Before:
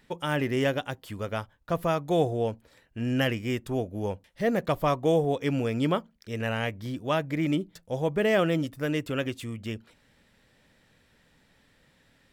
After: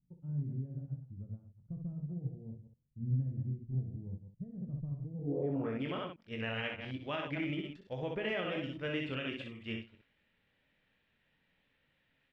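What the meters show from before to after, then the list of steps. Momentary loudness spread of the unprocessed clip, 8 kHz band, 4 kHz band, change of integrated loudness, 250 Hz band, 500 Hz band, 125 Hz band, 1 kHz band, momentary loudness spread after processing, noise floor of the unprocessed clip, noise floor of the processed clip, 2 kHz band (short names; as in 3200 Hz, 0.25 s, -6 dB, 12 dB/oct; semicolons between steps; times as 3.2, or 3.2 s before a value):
11 LU, under -25 dB, -8.5 dB, -10.5 dB, -10.5 dB, -14.0 dB, -5.5 dB, -15.5 dB, 12 LU, -65 dBFS, -77 dBFS, -9.0 dB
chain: reverse delay 0.107 s, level -7 dB; on a send: early reflections 22 ms -6.5 dB, 62 ms -5.5 dB; on the sum: limiter -20 dBFS, peak gain reduction 10.5 dB; low-pass sweep 150 Hz -> 2800 Hz, 5.13–5.88; upward expander 1.5:1, over -42 dBFS; gain -6.5 dB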